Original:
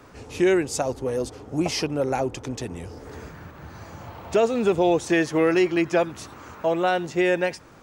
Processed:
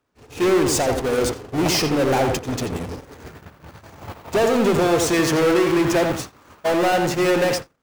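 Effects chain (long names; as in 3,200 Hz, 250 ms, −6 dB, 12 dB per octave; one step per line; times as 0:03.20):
power curve on the samples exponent 0.35
tape delay 87 ms, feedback 40%, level −3 dB, low-pass 2,300 Hz
noise gate −17 dBFS, range −46 dB
level −4 dB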